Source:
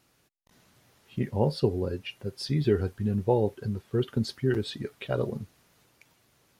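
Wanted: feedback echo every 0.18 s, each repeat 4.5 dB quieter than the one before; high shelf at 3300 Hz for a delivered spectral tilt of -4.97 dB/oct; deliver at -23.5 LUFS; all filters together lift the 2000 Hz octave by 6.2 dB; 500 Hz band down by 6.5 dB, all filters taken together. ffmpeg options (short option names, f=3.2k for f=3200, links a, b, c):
-af "equalizer=f=500:t=o:g=-9,equalizer=f=2k:t=o:g=6,highshelf=f=3.3k:g=8.5,aecho=1:1:180|360|540|720|900|1080|1260|1440|1620:0.596|0.357|0.214|0.129|0.0772|0.0463|0.0278|0.0167|0.01,volume=5.5dB"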